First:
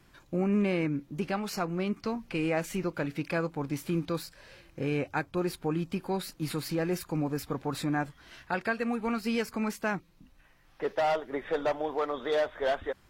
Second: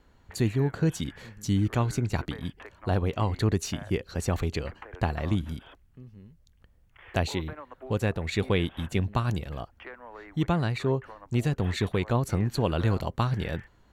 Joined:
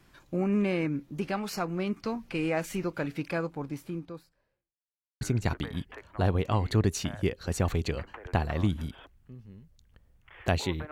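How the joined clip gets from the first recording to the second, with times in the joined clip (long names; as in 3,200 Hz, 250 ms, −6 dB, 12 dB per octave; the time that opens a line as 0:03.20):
first
0:03.08–0:04.79: fade out and dull
0:04.79–0:05.21: silence
0:05.21: continue with second from 0:01.89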